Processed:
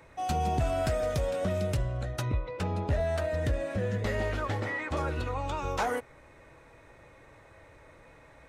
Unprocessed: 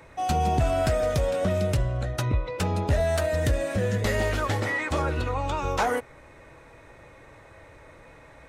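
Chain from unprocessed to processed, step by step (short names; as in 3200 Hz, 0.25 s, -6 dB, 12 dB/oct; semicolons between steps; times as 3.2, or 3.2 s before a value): 2.39–4.97 high shelf 5300 Hz -11.5 dB; gain -5 dB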